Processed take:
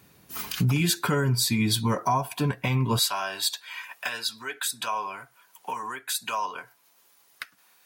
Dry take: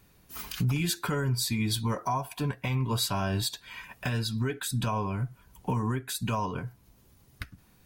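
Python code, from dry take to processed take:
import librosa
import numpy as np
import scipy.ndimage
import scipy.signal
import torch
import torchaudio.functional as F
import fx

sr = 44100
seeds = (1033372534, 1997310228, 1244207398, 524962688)

y = fx.highpass(x, sr, hz=fx.steps((0.0, 110.0), (2.99, 840.0)), slope=12)
y = y * 10.0 ** (5.5 / 20.0)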